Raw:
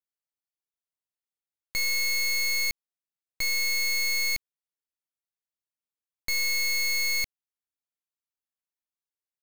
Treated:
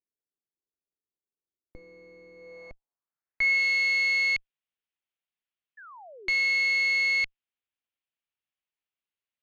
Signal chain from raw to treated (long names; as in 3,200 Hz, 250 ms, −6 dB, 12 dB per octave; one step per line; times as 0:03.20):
harmonic generator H 6 −13 dB, 7 −11 dB, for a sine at −25.5 dBFS
low-pass filter sweep 390 Hz → 2,900 Hz, 0:02.34–0:03.63
sound drawn into the spectrogram fall, 0:05.77–0:06.29, 340–1,800 Hz −47 dBFS